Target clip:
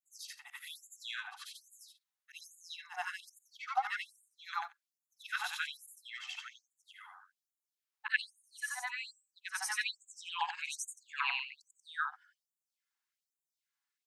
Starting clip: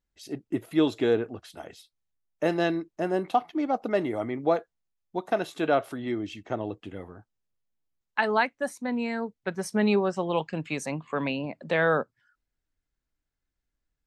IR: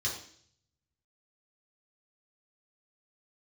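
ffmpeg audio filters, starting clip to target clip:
-af "afftfilt=real='re':imag='-im':win_size=8192:overlap=0.75,afftfilt=real='re*gte(b*sr/1024,700*pow(6700/700,0.5+0.5*sin(2*PI*1.2*pts/sr)))':imag='im*gte(b*sr/1024,700*pow(6700/700,0.5+0.5*sin(2*PI*1.2*pts/sr)))':win_size=1024:overlap=0.75,volume=6dB"

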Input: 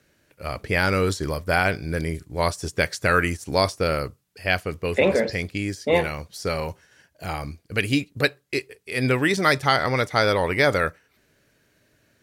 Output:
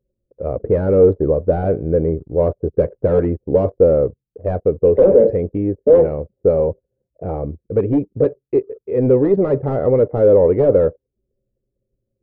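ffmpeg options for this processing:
ffmpeg -i in.wav -af "aeval=exprs='0.531*sin(PI/2*3.16*val(0)/0.531)':channel_layout=same,lowpass=frequency=490:width_type=q:width=3.6,anlmdn=100,volume=-7.5dB" out.wav

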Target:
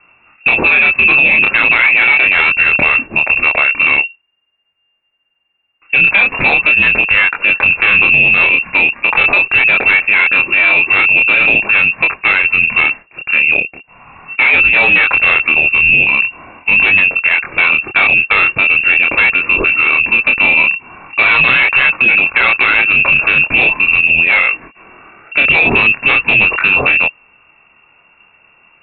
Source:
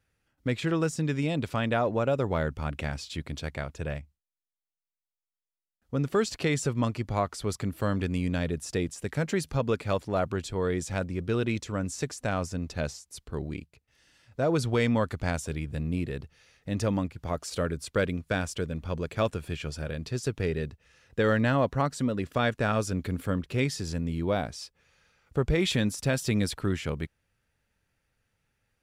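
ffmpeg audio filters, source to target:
ffmpeg -i in.wav -af "lowpass=frequency=2400:width_type=q:width=0.5098,lowpass=frequency=2400:width_type=q:width=0.6013,lowpass=frequency=2400:width_type=q:width=0.9,lowpass=frequency=2400:width_type=q:width=2.563,afreqshift=-2800,lowshelf=frequency=180:gain=7,aresample=8000,asoftclip=type=tanh:threshold=-26.5dB,aresample=44100,flanger=delay=22.5:depth=6.1:speed=0.41,alimiter=level_in=31.5dB:limit=-1dB:release=50:level=0:latency=1,volume=-1dB" out.wav

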